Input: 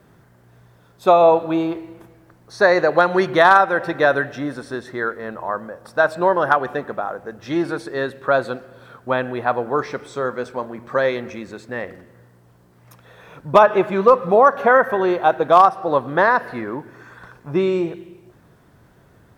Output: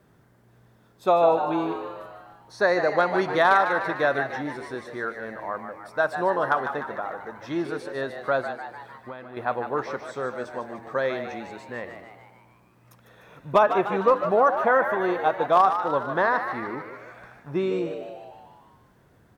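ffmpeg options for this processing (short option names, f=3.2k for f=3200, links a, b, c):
-filter_complex "[0:a]asettb=1/sr,asplit=3[a][b][c];[a]atrim=end=8.414[d];[b]atrim=start=8.41:end=9.37,asetpts=PTS-STARTPTS,afade=t=in:d=0.004:c=qsin,afade=t=out:st=0.956:d=0.004:c=qsin,acompressor=threshold=-31dB:ratio=4[e];[c]atrim=start=9.366[f];[d][e]acrossfade=d=0.004:c1=hsin:c2=qsin[g];[g][f]acrossfade=d=0.004:c1=qsin:c2=hsin,asplit=8[h][i][j][k][l][m][n][o];[i]adelay=150,afreqshift=100,volume=-9dB[p];[j]adelay=300,afreqshift=200,volume=-13.9dB[q];[k]adelay=450,afreqshift=300,volume=-18.8dB[r];[l]adelay=600,afreqshift=400,volume=-23.6dB[s];[m]adelay=750,afreqshift=500,volume=-28.5dB[t];[n]adelay=900,afreqshift=600,volume=-33.4dB[u];[o]adelay=1050,afreqshift=700,volume=-38.3dB[v];[h][p][q][r][s][t][u][v]amix=inputs=8:normalize=0,volume=-7dB"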